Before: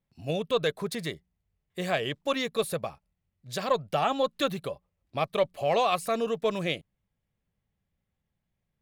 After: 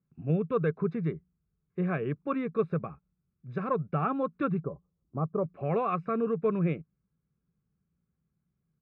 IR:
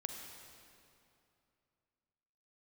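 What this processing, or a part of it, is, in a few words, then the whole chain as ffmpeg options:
bass cabinet: -filter_complex "[0:a]equalizer=f=3.3k:w=1:g=-11.5,aecho=1:1:0.8:0.63,asettb=1/sr,asplit=3[a][b][c];[a]atrim=end=4.604[d];[b]atrim=start=4.6:end=5.44,asetpts=PTS-STARTPTS,afade=t=in:d=0.004:c=qsin,afade=t=out:st=0.836:d=0.004:c=qsin,lowpass=f=1.1k:w=0.5412,lowpass=f=1.1k:w=1.3066[e];[c]atrim=start=5.436[f];[d][e]acrossfade=d=0.004:c1=hsin:c2=qsin[g];[g][f]acrossfade=d=0.004:c1=qsin:c2=hsin,highpass=65,equalizer=f=96:t=q:w=4:g=-10,equalizer=f=160:t=q:w=4:g=6,equalizer=f=410:t=q:w=4:g=4,equalizer=f=910:t=q:w=4:g=-10,lowpass=f=2.1k:w=0.5412,lowpass=f=2.1k:w=1.3066"

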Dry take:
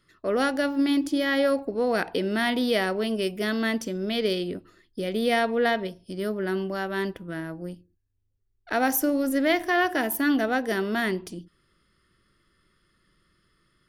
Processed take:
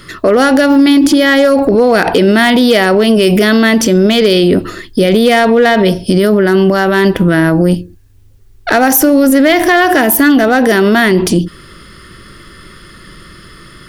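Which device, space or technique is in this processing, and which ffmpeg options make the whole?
loud club master: -af "acompressor=threshold=-27dB:ratio=2.5,asoftclip=type=hard:threshold=-22dB,alimiter=level_in=32.5dB:limit=-1dB:release=50:level=0:latency=1,volume=-1dB"

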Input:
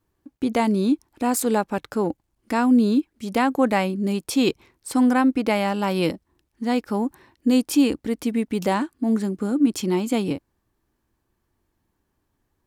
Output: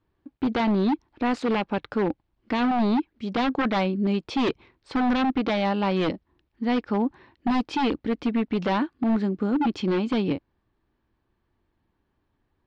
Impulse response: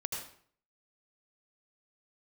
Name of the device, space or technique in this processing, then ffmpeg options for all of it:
synthesiser wavefolder: -af "aeval=exprs='0.141*(abs(mod(val(0)/0.141+3,4)-2)-1)':c=same,lowpass=f=4.1k:w=0.5412,lowpass=f=4.1k:w=1.3066"

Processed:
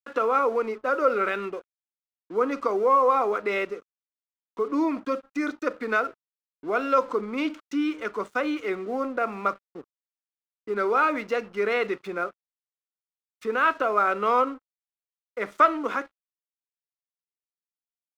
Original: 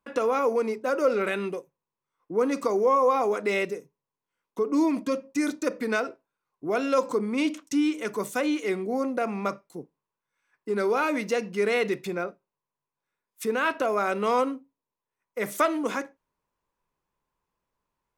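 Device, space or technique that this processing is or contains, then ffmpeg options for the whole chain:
pocket radio on a weak battery: -af "highpass=250,lowpass=3.6k,aeval=exprs='sgn(val(0))*max(abs(val(0))-0.00299,0)':c=same,equalizer=f=1.3k:t=o:w=0.41:g=9"

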